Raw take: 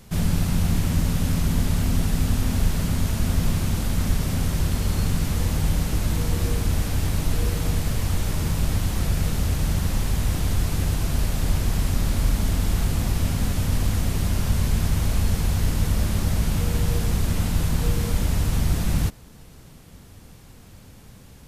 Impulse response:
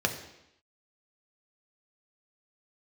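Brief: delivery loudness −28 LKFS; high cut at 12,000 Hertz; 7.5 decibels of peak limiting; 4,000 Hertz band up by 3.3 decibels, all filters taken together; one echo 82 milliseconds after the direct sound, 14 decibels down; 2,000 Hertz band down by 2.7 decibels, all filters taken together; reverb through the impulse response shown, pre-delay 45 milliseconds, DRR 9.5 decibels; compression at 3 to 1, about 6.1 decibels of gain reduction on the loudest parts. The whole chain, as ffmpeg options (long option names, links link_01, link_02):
-filter_complex "[0:a]lowpass=12000,equalizer=frequency=2000:width_type=o:gain=-5,equalizer=frequency=4000:width_type=o:gain=5.5,acompressor=threshold=-24dB:ratio=3,alimiter=limit=-22.5dB:level=0:latency=1,aecho=1:1:82:0.2,asplit=2[link_01][link_02];[1:a]atrim=start_sample=2205,adelay=45[link_03];[link_02][link_03]afir=irnorm=-1:irlink=0,volume=-19.5dB[link_04];[link_01][link_04]amix=inputs=2:normalize=0,volume=3.5dB"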